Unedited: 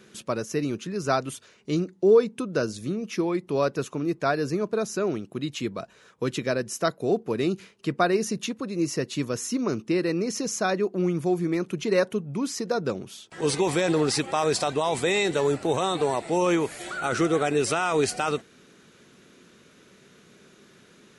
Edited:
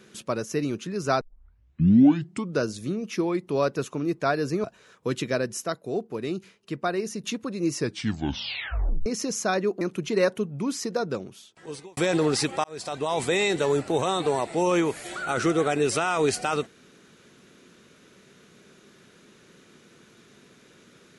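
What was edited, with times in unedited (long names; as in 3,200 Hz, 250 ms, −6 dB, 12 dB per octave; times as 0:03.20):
0:01.21: tape start 1.39 s
0:04.64–0:05.80: remove
0:06.80–0:08.40: clip gain −5 dB
0:08.91: tape stop 1.31 s
0:10.97–0:11.56: remove
0:12.63–0:13.72: fade out
0:14.39–0:14.95: fade in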